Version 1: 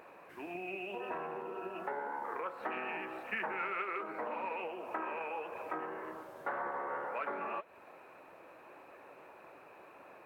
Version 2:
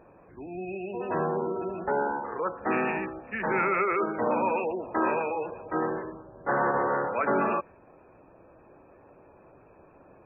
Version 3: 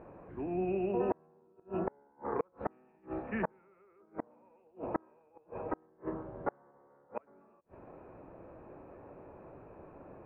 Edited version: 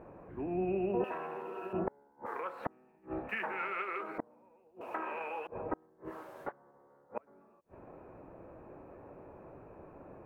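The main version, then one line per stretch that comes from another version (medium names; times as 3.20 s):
3
1.04–1.73 s: from 1
2.26–2.66 s: from 1
3.29–4.18 s: from 1
4.81–5.47 s: from 1
6.08–6.48 s: from 1, crossfade 0.10 s
not used: 2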